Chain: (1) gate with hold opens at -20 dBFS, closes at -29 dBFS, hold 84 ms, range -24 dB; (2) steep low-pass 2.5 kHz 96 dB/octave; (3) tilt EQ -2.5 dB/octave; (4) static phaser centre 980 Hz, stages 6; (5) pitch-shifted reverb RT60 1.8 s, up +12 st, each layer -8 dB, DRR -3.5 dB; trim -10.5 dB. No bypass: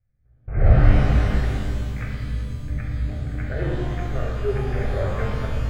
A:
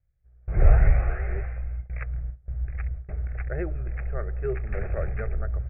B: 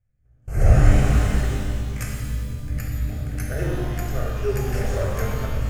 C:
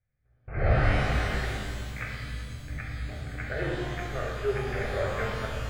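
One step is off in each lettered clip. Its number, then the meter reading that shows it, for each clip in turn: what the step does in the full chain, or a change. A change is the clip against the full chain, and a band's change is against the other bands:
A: 5, 250 Hz band -6.0 dB; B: 2, 4 kHz band +1.5 dB; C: 3, 125 Hz band -8.0 dB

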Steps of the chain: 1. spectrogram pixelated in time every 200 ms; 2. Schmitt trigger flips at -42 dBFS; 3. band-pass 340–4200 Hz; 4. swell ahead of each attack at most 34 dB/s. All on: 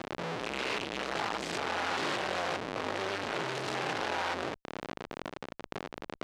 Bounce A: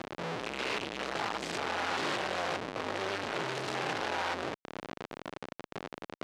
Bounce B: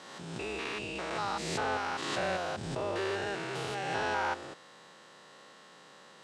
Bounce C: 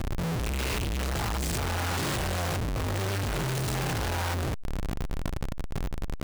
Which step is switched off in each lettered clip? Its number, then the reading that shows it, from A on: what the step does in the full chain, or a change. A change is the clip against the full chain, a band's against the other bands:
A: 4, crest factor change -4.5 dB; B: 2, 125 Hz band +2.5 dB; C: 3, 125 Hz band +17.0 dB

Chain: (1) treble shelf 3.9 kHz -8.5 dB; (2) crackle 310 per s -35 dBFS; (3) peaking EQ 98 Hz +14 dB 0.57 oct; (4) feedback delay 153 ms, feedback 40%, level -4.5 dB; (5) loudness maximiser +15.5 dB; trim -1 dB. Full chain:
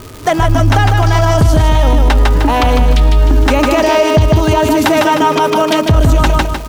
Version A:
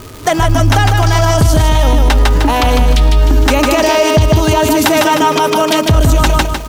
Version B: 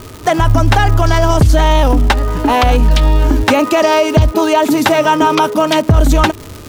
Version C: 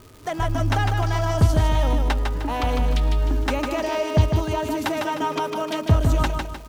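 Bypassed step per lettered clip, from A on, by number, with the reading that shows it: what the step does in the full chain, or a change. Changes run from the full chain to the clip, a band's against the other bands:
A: 1, 8 kHz band +6.0 dB; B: 4, momentary loudness spread change +1 LU; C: 5, crest factor change +8.0 dB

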